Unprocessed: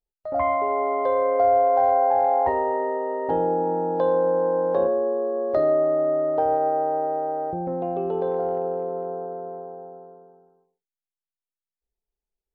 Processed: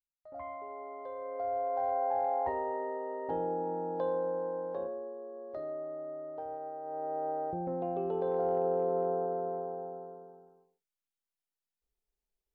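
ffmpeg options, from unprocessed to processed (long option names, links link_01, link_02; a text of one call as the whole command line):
ffmpeg -i in.wav -af "volume=7dB,afade=type=in:start_time=1.17:duration=0.98:silence=0.354813,afade=type=out:start_time=4.03:duration=1.12:silence=0.398107,afade=type=in:start_time=6.82:duration=0.46:silence=0.266073,afade=type=in:start_time=8.23:duration=0.8:silence=0.473151" out.wav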